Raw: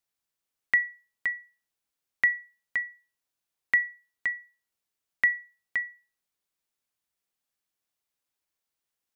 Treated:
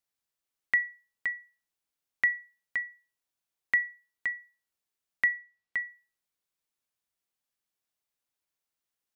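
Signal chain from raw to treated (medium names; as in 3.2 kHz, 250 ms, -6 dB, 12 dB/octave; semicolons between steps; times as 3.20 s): 5.28–5.76 s: distance through air 73 m; trim -2.5 dB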